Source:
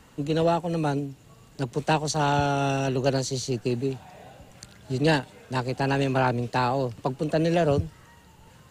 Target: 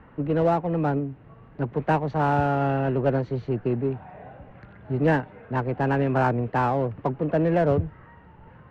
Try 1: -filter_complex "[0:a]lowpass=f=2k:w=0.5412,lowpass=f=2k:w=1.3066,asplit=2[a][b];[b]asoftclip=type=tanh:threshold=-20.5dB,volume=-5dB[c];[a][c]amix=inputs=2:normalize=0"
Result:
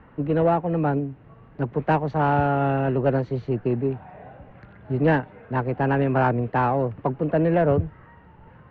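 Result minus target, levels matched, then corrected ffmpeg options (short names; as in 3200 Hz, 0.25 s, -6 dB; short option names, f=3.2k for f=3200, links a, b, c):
soft clip: distortion -8 dB
-filter_complex "[0:a]lowpass=f=2k:w=0.5412,lowpass=f=2k:w=1.3066,asplit=2[a][b];[b]asoftclip=type=tanh:threshold=-31dB,volume=-5dB[c];[a][c]amix=inputs=2:normalize=0"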